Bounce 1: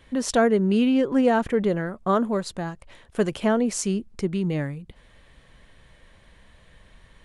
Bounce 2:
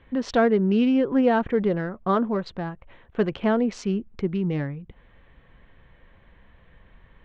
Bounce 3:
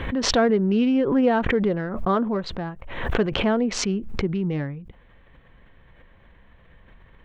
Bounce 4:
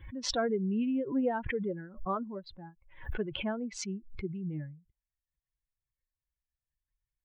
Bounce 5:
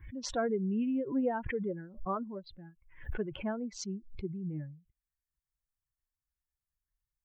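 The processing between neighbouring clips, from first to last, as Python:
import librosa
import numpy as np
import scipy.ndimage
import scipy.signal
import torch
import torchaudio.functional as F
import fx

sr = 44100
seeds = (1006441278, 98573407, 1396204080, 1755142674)

y1 = fx.wiener(x, sr, points=9)
y1 = scipy.signal.sosfilt(scipy.signal.butter(4, 4600.0, 'lowpass', fs=sr, output='sos'), y1)
y1 = fx.notch(y1, sr, hz=610.0, q=13.0)
y2 = fx.pre_swell(y1, sr, db_per_s=54.0)
y3 = fx.bin_expand(y2, sr, power=2.0)
y3 = y3 * librosa.db_to_amplitude(-8.0)
y4 = fx.env_phaser(y3, sr, low_hz=520.0, high_hz=4900.0, full_db=-31.5)
y4 = y4 * librosa.db_to_amplitude(-1.0)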